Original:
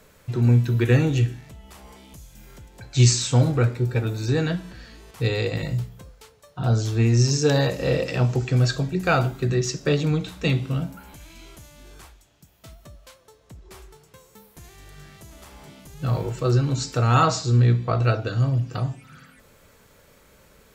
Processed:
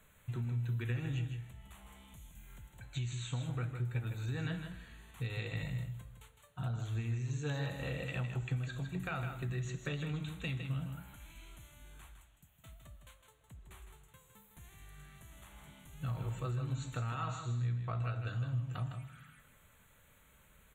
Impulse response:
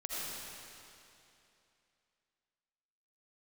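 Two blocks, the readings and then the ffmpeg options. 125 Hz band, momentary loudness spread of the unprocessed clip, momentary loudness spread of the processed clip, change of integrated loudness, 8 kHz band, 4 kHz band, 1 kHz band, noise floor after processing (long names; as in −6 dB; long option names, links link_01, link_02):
−15.5 dB, 10 LU, 19 LU, −16.5 dB, −23.0 dB, −18.5 dB, −18.0 dB, −65 dBFS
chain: -filter_complex "[0:a]acrossover=split=6300[link_01][link_02];[link_02]acompressor=threshold=-50dB:ratio=4:attack=1:release=60[link_03];[link_01][link_03]amix=inputs=2:normalize=0,equalizer=frequency=420:width_type=o:width=1.7:gain=-11,alimiter=limit=-17dB:level=0:latency=1:release=403,acompressor=threshold=-26dB:ratio=6,asuperstop=centerf=5100:order=4:qfactor=1.6,aecho=1:1:158:0.422,asplit=2[link_04][link_05];[1:a]atrim=start_sample=2205,afade=type=out:start_time=0.39:duration=0.01,atrim=end_sample=17640[link_06];[link_05][link_06]afir=irnorm=-1:irlink=0,volume=-19dB[link_07];[link_04][link_07]amix=inputs=2:normalize=0,volume=-8.5dB"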